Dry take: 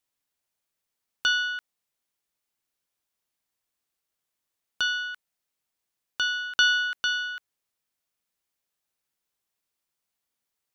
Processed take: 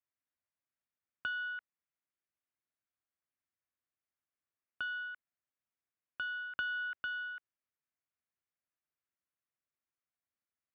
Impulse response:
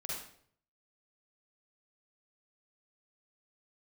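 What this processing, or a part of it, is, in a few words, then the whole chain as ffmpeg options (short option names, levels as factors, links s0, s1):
bass amplifier: -af "acompressor=threshold=0.0562:ratio=3,highpass=66,equalizer=f=83:t=q:w=4:g=5,equalizer=f=180:t=q:w=4:g=-4,equalizer=f=450:t=q:w=4:g=-8,equalizer=f=860:t=q:w=4:g=-7,lowpass=f=2300:w=0.5412,lowpass=f=2300:w=1.3066,volume=0.422"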